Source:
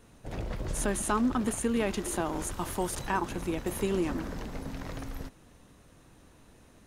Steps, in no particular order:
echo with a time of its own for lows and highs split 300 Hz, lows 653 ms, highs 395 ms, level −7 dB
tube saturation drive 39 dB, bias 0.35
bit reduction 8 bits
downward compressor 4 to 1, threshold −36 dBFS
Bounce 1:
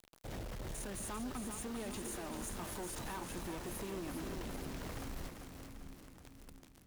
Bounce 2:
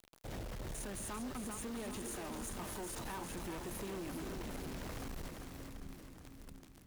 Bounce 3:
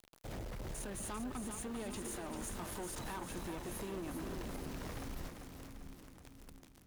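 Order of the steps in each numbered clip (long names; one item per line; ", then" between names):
downward compressor, then bit reduction, then tube saturation, then echo with a time of its own for lows and highs
downward compressor, then bit reduction, then echo with a time of its own for lows and highs, then tube saturation
bit reduction, then downward compressor, then tube saturation, then echo with a time of its own for lows and highs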